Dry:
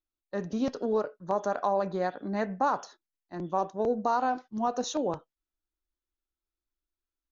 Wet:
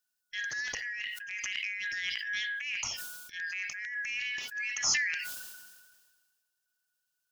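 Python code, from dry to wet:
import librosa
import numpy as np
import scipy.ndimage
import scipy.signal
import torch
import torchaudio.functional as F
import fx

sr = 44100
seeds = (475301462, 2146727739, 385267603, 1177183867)

y = fx.band_shuffle(x, sr, order='4123')
y = fx.over_compress(y, sr, threshold_db=-31.0, ratio=-1.0)
y = fx.high_shelf(y, sr, hz=2800.0, db=11.0)
y = fx.transient(y, sr, attack_db=-6, sustain_db=4)
y = fx.peak_eq(y, sr, hz=2000.0, db=-11.0, octaves=0.59)
y = fx.sustainer(y, sr, db_per_s=36.0)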